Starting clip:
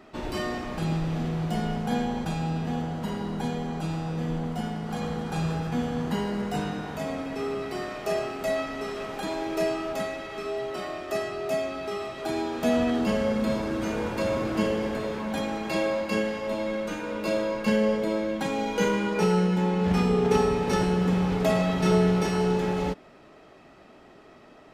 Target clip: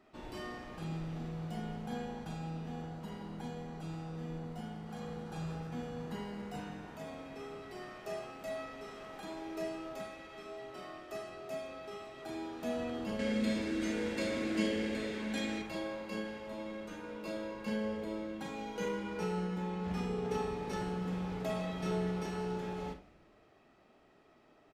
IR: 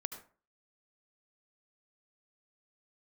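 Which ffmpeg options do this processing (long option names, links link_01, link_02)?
-filter_complex "[0:a]asettb=1/sr,asplit=3[link_01][link_02][link_03];[link_01]atrim=end=13.194[link_04];[link_02]atrim=start=13.19:end=15.62,asetpts=PTS-STARTPTS,afade=type=in:duration=0.004:curve=qsin,afade=type=out:start_time=2.426:duration=0.004:curve=qsin,equalizer=frequency=125:width_type=o:width=1:gain=-6,equalizer=frequency=250:width_type=o:width=1:gain=9,equalizer=frequency=500:width_type=o:width=1:gain=4,equalizer=frequency=1000:width_type=o:width=1:gain=-6,equalizer=frequency=2000:width_type=o:width=1:gain=11,equalizer=frequency=4000:width_type=o:width=1:gain=7,equalizer=frequency=8000:width_type=o:width=1:gain=10[link_05];[link_03]atrim=start=15.616[link_06];[link_04][link_05]acrossfade=duration=0.004:curve1=hsin:curve2=qsin[link_07];[link_07][link_06]acrossfade=duration=0.004:curve1=qsin:curve2=hsin,asplit=5[link_08][link_09][link_10][link_11][link_12];[link_09]adelay=168,afreqshift=-130,volume=-21dB[link_13];[link_10]adelay=336,afreqshift=-260,volume=-26.5dB[link_14];[link_11]adelay=504,afreqshift=-390,volume=-32dB[link_15];[link_12]adelay=672,afreqshift=-520,volume=-37.5dB[link_16];[link_08][link_13][link_14][link_15][link_16]amix=inputs=5:normalize=0[link_17];[1:a]atrim=start_sample=2205,asetrate=83790,aresample=44100[link_18];[link_17][link_18]afir=irnorm=-1:irlink=0,volume=-6.5dB"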